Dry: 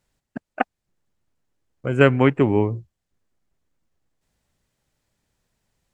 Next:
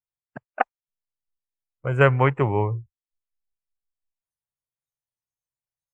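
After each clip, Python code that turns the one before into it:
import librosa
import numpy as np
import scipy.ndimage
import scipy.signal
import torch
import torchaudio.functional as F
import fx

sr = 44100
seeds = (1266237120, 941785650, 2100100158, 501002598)

y = fx.noise_reduce_blind(x, sr, reduce_db=27)
y = fx.graphic_eq_10(y, sr, hz=(125, 250, 500, 1000, 2000, 4000), db=(9, -9, 4, 9, 4, -3))
y = y * librosa.db_to_amplitude(-6.0)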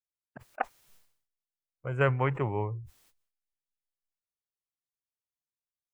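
y = fx.sustainer(x, sr, db_per_s=92.0)
y = y * librosa.db_to_amplitude(-9.0)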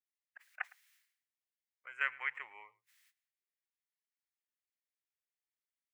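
y = fx.highpass_res(x, sr, hz=1900.0, q=3.5)
y = y + 10.0 ** (-23.0 / 20.0) * np.pad(y, (int(109 * sr / 1000.0), 0))[:len(y)]
y = y * librosa.db_to_amplitude(-7.5)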